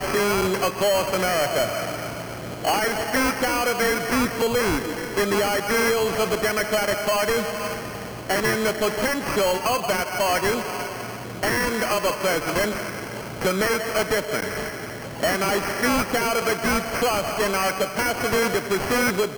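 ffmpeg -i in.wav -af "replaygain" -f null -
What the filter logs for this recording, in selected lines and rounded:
track_gain = +4.6 dB
track_peak = 0.111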